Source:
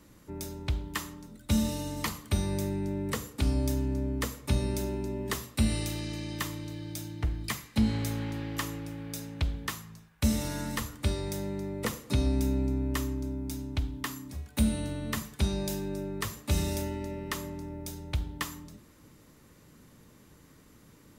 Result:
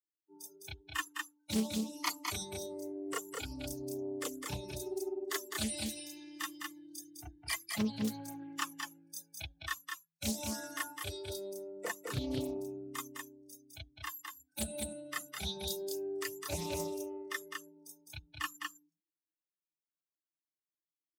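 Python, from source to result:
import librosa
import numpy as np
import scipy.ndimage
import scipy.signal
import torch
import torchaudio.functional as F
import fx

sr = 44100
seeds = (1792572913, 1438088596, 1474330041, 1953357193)

y = fx.bin_expand(x, sr, power=3.0)
y = scipy.signal.sosfilt(scipy.signal.butter(2, 190.0, 'highpass', fs=sr, output='sos'), y)
y = fx.high_shelf(y, sr, hz=4800.0, db=5.0)
y = y + 10.0 ** (-4.0 / 20.0) * np.pad(y, (int(207 * sr / 1000.0), 0))[:len(y)]
y = fx.dynamic_eq(y, sr, hz=250.0, q=2.6, threshold_db=-51.0, ratio=4.0, max_db=-5)
y = fx.chorus_voices(y, sr, voices=2, hz=0.12, base_ms=30, depth_ms=2.1, mix_pct=60)
y = fx.doppler_dist(y, sr, depth_ms=0.54)
y = y * librosa.db_to_amplitude(6.0)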